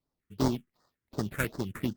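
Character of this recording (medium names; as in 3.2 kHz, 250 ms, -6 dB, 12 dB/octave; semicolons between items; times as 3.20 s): aliases and images of a low sample rate 3.1 kHz, jitter 20%; phasing stages 4, 2.7 Hz, lowest notch 720–2500 Hz; Opus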